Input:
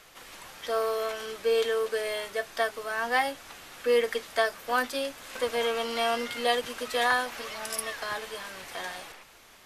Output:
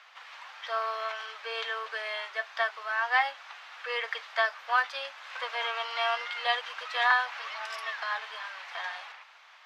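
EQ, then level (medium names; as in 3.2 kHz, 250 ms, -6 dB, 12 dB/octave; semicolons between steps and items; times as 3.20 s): high-pass 820 Hz 24 dB/octave; distance through air 220 m; +4.0 dB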